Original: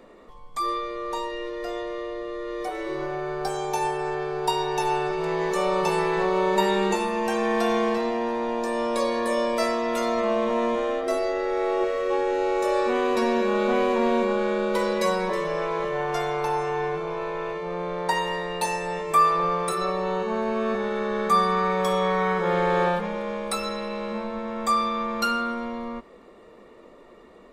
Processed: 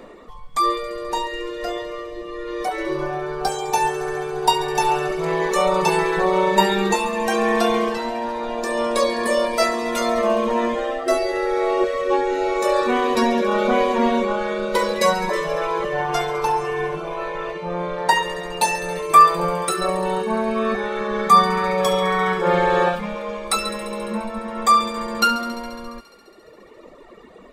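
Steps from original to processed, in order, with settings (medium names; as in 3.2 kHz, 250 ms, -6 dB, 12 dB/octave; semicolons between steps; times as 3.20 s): reverb removal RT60 1.8 s; feedback echo behind a high-pass 69 ms, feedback 83%, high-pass 1.6 kHz, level -14 dB; trim +8.5 dB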